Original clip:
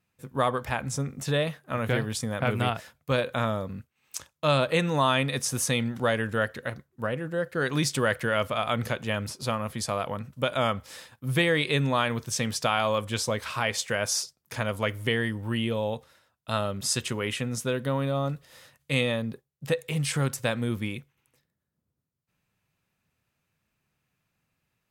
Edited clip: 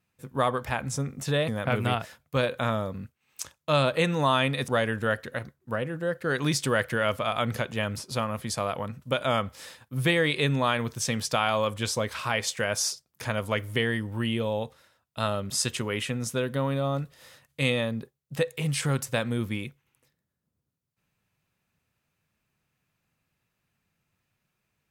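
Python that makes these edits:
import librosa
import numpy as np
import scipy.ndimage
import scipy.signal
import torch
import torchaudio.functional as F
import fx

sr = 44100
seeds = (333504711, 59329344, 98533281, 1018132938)

y = fx.edit(x, sr, fx.cut(start_s=1.48, length_s=0.75),
    fx.cut(start_s=5.43, length_s=0.56), tone=tone)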